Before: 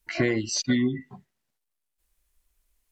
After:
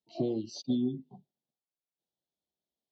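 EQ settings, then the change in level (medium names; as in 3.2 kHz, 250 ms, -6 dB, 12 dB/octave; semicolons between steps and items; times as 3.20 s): high-pass 130 Hz 24 dB/octave; Chebyshev band-stop 810–3400 Hz, order 3; distance through air 220 m; -5.0 dB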